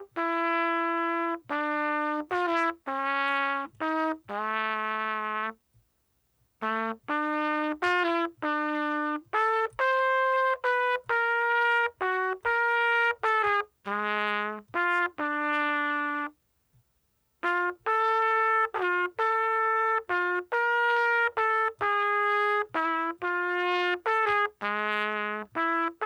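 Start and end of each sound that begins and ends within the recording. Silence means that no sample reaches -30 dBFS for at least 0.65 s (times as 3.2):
6.62–16.27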